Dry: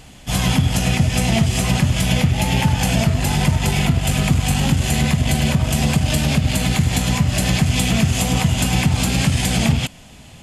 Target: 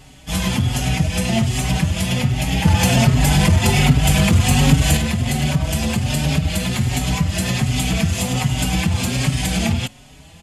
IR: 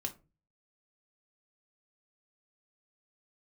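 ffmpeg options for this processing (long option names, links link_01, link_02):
-filter_complex "[0:a]asettb=1/sr,asplit=3[link_01][link_02][link_03];[link_01]atrim=end=2.654[link_04];[link_02]atrim=start=2.65:end=4.97,asetpts=PTS-STARTPTS,afade=type=in:duration=0.004:curve=qsin,afade=type=out:start_time=2.316:duration=0.004:curve=qsin,acontrast=53[link_05];[link_03]atrim=start=4.966[link_06];[link_04][link_05]acrossfade=duration=0.004:curve1=hsin:curve2=qsin[link_07];[link_07][link_06]acrossfade=duration=0.004:curve1=qsin:curve2=hsin,asplit=2[link_08][link_09];[link_09]adelay=5,afreqshift=1.3[link_10];[link_08][link_10]amix=inputs=2:normalize=1,volume=1dB"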